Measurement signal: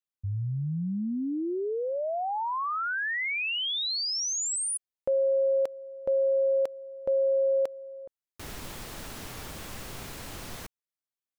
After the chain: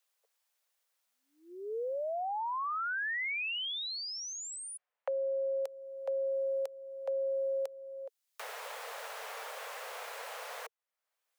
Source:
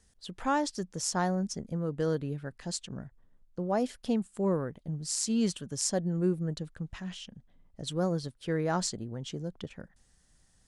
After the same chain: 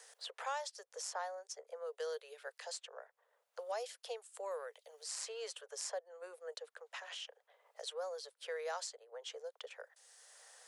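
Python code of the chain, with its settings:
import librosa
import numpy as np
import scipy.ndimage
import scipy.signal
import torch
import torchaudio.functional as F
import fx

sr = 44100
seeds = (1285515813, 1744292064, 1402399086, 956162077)

y = scipy.signal.sosfilt(scipy.signal.butter(16, 450.0, 'highpass', fs=sr, output='sos'), x)
y = fx.band_squash(y, sr, depth_pct=70)
y = y * librosa.db_to_amplitude(-7.0)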